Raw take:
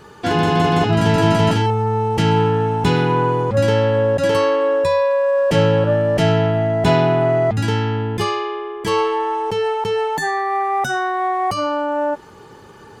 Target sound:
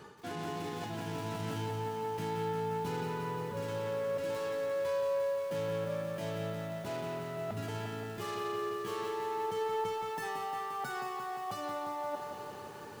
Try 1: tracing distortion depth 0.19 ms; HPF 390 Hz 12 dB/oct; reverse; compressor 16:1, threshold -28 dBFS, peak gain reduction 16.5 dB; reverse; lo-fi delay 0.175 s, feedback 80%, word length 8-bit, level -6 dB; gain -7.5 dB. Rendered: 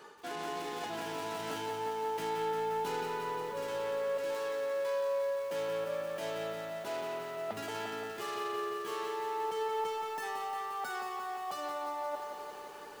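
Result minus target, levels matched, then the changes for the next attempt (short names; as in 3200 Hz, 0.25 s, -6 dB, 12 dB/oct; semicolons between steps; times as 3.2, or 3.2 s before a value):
125 Hz band -13.5 dB
change: HPF 100 Hz 12 dB/oct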